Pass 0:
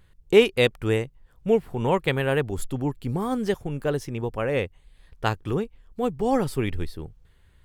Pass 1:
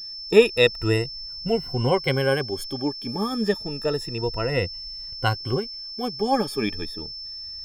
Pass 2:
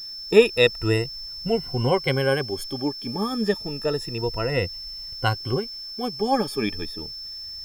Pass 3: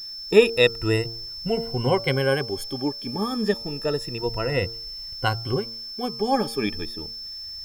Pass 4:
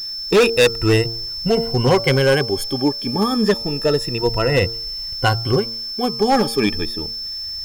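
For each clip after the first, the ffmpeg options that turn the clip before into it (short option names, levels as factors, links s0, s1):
-af "afftfilt=real='re*pow(10,18/40*sin(2*PI*(2*log(max(b,1)*sr/1024/100)/log(2)-(0.29)*(pts-256)/sr)))':imag='im*pow(10,18/40*sin(2*PI*(2*log(max(b,1)*sr/1024/100)/log(2)-(0.29)*(pts-256)/sr)))':win_size=1024:overlap=0.75,aeval=exprs='val(0)+0.0282*sin(2*PI*5300*n/s)':c=same,volume=0.75"
-af "acrusher=bits=8:mix=0:aa=0.000001"
-af "bandreject=f=114.6:t=h:w=4,bandreject=f=229.2:t=h:w=4,bandreject=f=343.8:t=h:w=4,bandreject=f=458.4:t=h:w=4,bandreject=f=573:t=h:w=4,bandreject=f=687.6:t=h:w=4,bandreject=f=802.2:t=h:w=4,bandreject=f=916.8:t=h:w=4,bandreject=f=1031.4:t=h:w=4,bandreject=f=1146:t=h:w=4,bandreject=f=1260.6:t=h:w=4,bandreject=f=1375.2:t=h:w=4"
-af "asoftclip=type=hard:threshold=0.141,volume=2.51"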